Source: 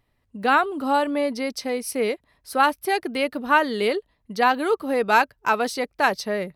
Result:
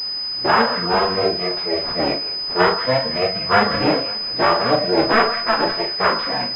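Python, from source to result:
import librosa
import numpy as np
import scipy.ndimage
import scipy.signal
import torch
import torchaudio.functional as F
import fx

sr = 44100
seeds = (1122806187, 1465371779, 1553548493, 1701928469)

p1 = fx.cycle_switch(x, sr, every=3, mode='inverted')
p2 = p1 + fx.echo_split(p1, sr, split_hz=1500.0, low_ms=97, high_ms=187, feedback_pct=52, wet_db=-9.0, dry=0)
p3 = fx.noise_reduce_blind(p2, sr, reduce_db=15)
p4 = fx.quant_dither(p3, sr, seeds[0], bits=6, dither='triangular')
p5 = p3 + (p4 * librosa.db_to_amplitude(-4.0))
p6 = fx.chorus_voices(p5, sr, voices=6, hz=0.54, base_ms=13, depth_ms=4.6, mix_pct=50)
p7 = fx.doubler(p6, sr, ms=39.0, db=-6)
p8 = fx.echo_feedback(p7, sr, ms=539, feedback_pct=52, wet_db=-21.5)
p9 = fx.pwm(p8, sr, carrier_hz=5000.0)
y = p9 * librosa.db_to_amplitude(1.0)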